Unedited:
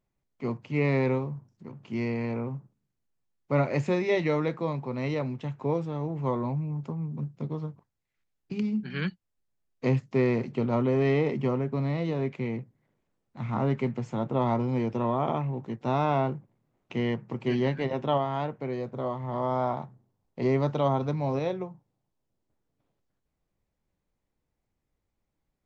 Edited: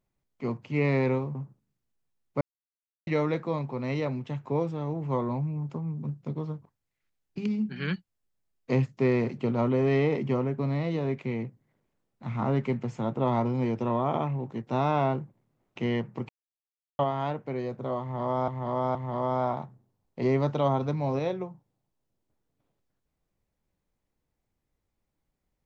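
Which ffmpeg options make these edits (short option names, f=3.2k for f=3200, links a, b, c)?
-filter_complex "[0:a]asplit=8[a][b][c][d][e][f][g][h];[a]atrim=end=1.352[i];[b]atrim=start=2.488:end=3.55,asetpts=PTS-STARTPTS,afade=t=out:st=1.058:d=0.004:c=hsin[j];[c]atrim=start=3.55:end=4.21,asetpts=PTS-STARTPTS,volume=0[k];[d]atrim=start=4.21:end=17.43,asetpts=PTS-STARTPTS,afade=t=in:d=0.004:c=hsin,afade=t=out:st=13.216:d=0.004:c=hsin[l];[e]atrim=start=17.43:end=18.13,asetpts=PTS-STARTPTS,volume=0[m];[f]atrim=start=18.13:end=19.622,asetpts=PTS-STARTPTS,afade=t=in:d=0.004:c=hsin[n];[g]atrim=start=19.148:end=19.622[o];[h]atrim=start=19.148[p];[j][k][l][m][n]concat=n=5:v=0:a=1[q];[i][q]acrossfade=d=0.004:c1=hsin:c2=hsin[r];[r][o]acrossfade=d=0.004:c1=hsin:c2=hsin[s];[s][p]acrossfade=d=0.004:c1=hsin:c2=hsin"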